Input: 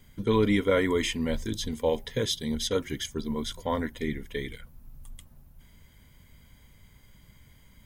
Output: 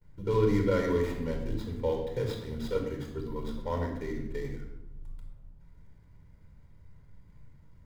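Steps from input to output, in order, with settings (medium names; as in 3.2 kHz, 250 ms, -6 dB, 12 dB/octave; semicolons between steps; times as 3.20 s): median filter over 15 samples; gate with hold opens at -51 dBFS; reverberation RT60 0.95 s, pre-delay 25 ms, DRR 2.5 dB; trim -8 dB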